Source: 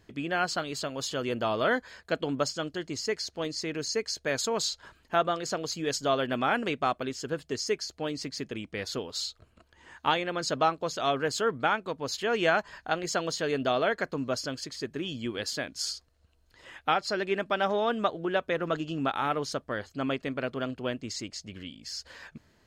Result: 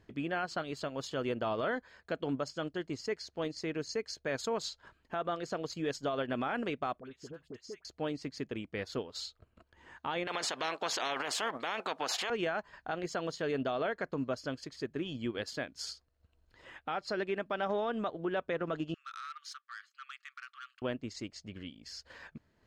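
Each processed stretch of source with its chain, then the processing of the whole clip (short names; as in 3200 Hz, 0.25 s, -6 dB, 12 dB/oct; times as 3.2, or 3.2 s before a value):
7–7.85 compressor 3:1, threshold -43 dBFS + dispersion highs, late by 54 ms, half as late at 1200 Hz
10.27–12.3 resonant high-pass 720 Hz, resonance Q 4.6 + high shelf 9700 Hz -4.5 dB + spectral compressor 4:1
18.94–20.82 compressor, threshold -30 dBFS + brick-wall FIR high-pass 1100 Hz + core saturation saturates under 3800 Hz
whole clip: high shelf 4100 Hz -10.5 dB; limiter -22.5 dBFS; transient shaper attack 0 dB, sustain -6 dB; gain -2 dB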